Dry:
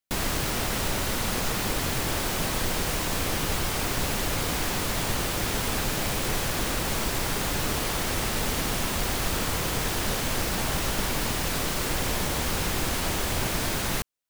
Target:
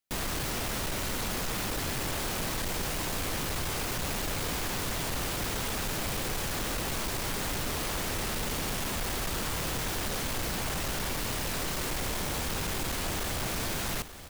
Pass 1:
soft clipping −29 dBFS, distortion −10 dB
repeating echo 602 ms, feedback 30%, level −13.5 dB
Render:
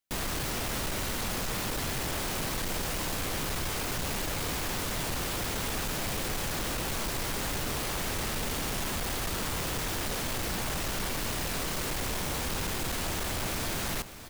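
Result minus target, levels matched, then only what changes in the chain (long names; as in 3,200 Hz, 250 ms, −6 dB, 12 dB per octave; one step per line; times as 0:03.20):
echo 283 ms early
change: repeating echo 885 ms, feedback 30%, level −13.5 dB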